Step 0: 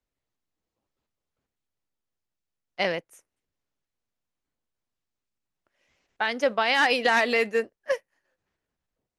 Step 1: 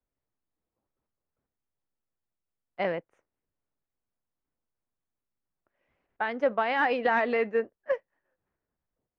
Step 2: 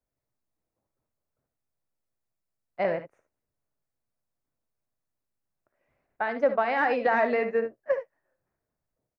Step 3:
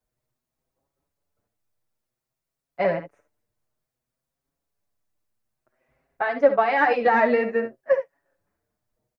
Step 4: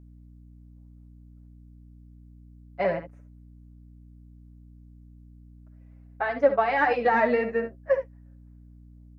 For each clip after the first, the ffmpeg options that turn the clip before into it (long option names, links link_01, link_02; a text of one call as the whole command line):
ffmpeg -i in.wav -af "lowpass=1600,volume=-1.5dB" out.wav
ffmpeg -i in.wav -af "equalizer=frequency=125:width_type=o:width=0.33:gain=7,equalizer=frequency=630:width_type=o:width=0.33:gain=5,equalizer=frequency=3150:width_type=o:width=0.33:gain=-8,aecho=1:1:58|71:0.237|0.251" out.wav
ffmpeg -i in.wav -filter_complex "[0:a]asplit=2[link_01][link_02];[link_02]adelay=6.2,afreqshift=0.56[link_03];[link_01][link_03]amix=inputs=2:normalize=1,volume=7.5dB" out.wav
ffmpeg -i in.wav -af "aeval=exprs='val(0)+0.00562*(sin(2*PI*60*n/s)+sin(2*PI*2*60*n/s)/2+sin(2*PI*3*60*n/s)/3+sin(2*PI*4*60*n/s)/4+sin(2*PI*5*60*n/s)/5)':channel_layout=same,volume=-3dB" out.wav